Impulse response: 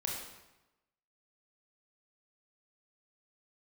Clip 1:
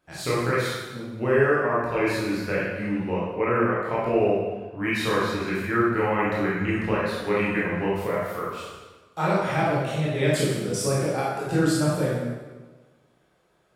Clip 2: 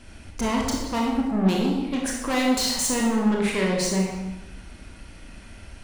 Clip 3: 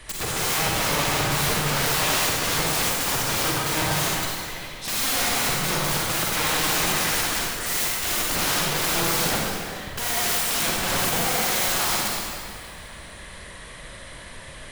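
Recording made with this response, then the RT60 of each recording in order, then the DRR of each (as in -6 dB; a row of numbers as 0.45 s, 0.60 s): 2; 1.3 s, 1.0 s, 2.1 s; -7.5 dB, -1.5 dB, -5.0 dB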